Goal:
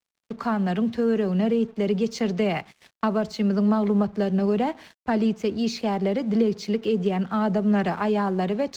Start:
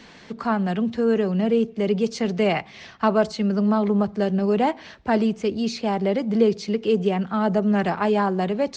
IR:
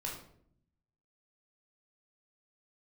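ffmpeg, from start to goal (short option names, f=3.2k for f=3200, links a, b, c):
-filter_complex "[0:a]acrossover=split=270[a][b];[b]acompressor=threshold=-22dB:ratio=10[c];[a][c]amix=inputs=2:normalize=0,agate=range=-12dB:threshold=-40dB:ratio=16:detection=peak,aeval=exprs='sgn(val(0))*max(abs(val(0))-0.00282,0)':c=same"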